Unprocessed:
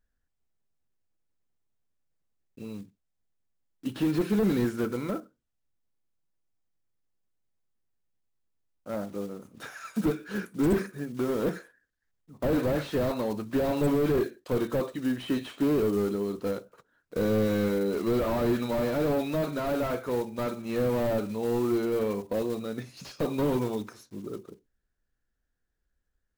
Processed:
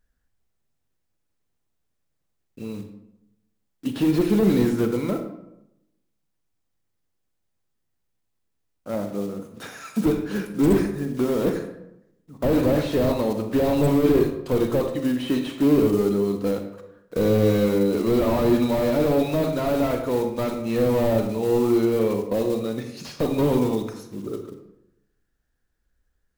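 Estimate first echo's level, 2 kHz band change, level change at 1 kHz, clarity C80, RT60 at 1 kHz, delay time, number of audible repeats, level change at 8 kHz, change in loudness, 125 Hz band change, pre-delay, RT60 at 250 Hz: no echo, +3.0 dB, +5.0 dB, 10.5 dB, 0.80 s, no echo, no echo, +6.0 dB, +6.5 dB, +7.0 dB, 35 ms, 0.95 s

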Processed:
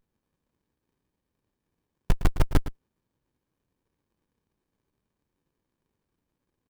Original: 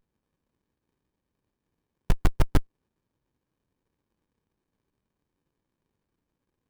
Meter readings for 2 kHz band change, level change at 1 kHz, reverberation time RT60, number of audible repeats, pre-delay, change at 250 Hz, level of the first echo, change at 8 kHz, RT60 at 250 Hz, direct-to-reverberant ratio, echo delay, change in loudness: 0.0 dB, 0.0 dB, no reverb, 1, no reverb, 0.0 dB, -13.5 dB, no reading, no reverb, no reverb, 111 ms, 0.0 dB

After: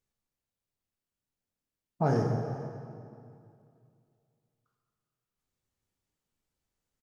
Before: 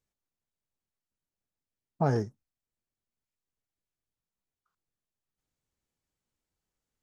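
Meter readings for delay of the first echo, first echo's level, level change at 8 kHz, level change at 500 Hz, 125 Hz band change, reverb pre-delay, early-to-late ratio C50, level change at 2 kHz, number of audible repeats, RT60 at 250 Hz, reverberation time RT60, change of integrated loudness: 441 ms, -20.0 dB, no reading, +1.5 dB, +2.0 dB, 13 ms, 2.5 dB, +0.5 dB, 1, 2.7 s, 2.4 s, -1.0 dB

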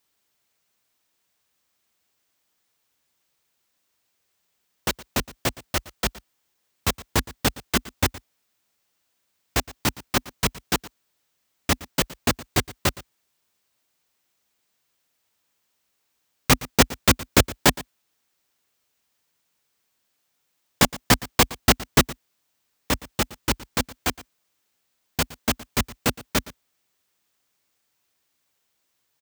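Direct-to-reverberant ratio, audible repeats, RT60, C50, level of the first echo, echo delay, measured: no reverb, 1, no reverb, no reverb, -19.0 dB, 116 ms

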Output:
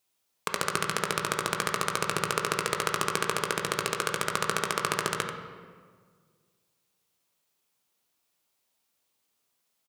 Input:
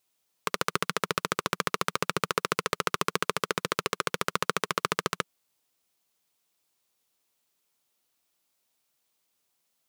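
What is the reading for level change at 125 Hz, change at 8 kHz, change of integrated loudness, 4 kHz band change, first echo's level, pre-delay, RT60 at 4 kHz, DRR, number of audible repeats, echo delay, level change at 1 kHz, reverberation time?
+1.5 dB, +4.0 dB, +1.0 dB, +0.5 dB, -8.5 dB, 14 ms, 1.1 s, 2.5 dB, 1, 88 ms, +0.5 dB, 1.7 s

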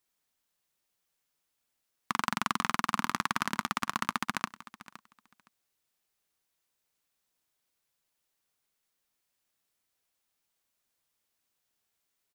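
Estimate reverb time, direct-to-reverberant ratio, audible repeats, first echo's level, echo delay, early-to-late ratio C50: no reverb, no reverb, 2, -17.5 dB, 515 ms, no reverb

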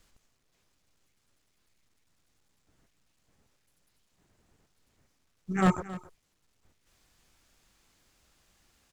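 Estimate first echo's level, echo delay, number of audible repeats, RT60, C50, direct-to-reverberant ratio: -16.5 dB, 270 ms, 1, no reverb, no reverb, no reverb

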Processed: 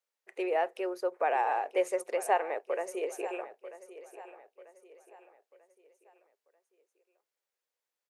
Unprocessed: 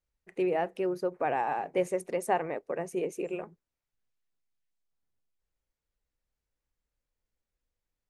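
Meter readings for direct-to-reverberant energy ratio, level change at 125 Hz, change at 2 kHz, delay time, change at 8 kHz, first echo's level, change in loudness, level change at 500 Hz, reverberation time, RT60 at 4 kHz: no reverb, under -25 dB, +1.5 dB, 941 ms, +1.5 dB, -15.0 dB, 0.0 dB, -0.5 dB, no reverb, no reverb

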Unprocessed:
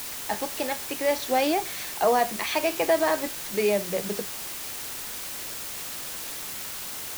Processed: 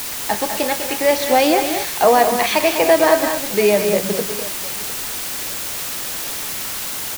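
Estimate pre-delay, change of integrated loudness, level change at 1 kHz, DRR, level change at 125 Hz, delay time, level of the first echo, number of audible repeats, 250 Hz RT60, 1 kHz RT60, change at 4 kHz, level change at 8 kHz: no reverb, +9.5 dB, +9.5 dB, no reverb, +9.5 dB, 120 ms, -14.5 dB, 3, no reverb, no reverb, +9.5 dB, +9.5 dB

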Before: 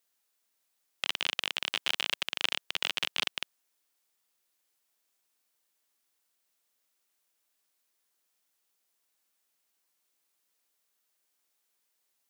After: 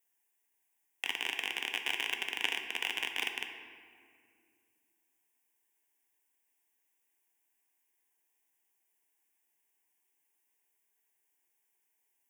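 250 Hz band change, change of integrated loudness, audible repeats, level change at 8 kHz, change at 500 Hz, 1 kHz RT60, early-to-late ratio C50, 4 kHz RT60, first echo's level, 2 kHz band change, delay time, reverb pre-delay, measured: -0.5 dB, -3.0 dB, no echo, -3.5 dB, -3.0 dB, 2.0 s, 6.5 dB, 1.2 s, no echo, 0.0 dB, no echo, 4 ms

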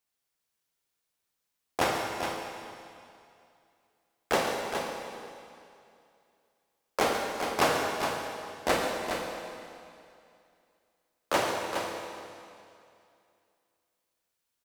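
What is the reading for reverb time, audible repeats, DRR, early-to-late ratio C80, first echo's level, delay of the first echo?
2.5 s, 2, 0.0 dB, 1.0 dB, -11.0 dB, 138 ms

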